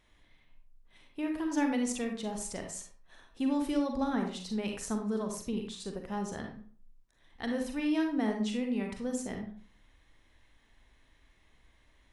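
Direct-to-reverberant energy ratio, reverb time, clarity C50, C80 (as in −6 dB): 3.0 dB, 0.50 s, 5.0 dB, 9.5 dB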